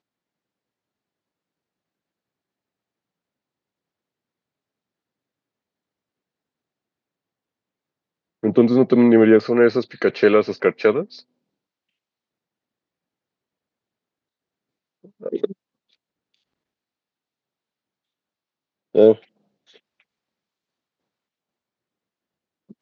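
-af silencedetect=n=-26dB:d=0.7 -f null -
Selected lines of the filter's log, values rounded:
silence_start: 0.00
silence_end: 8.44 | silence_duration: 8.44
silence_start: 11.03
silence_end: 15.26 | silence_duration: 4.23
silence_start: 15.52
silence_end: 18.95 | silence_duration: 3.43
silence_start: 19.13
silence_end: 22.81 | silence_duration: 3.68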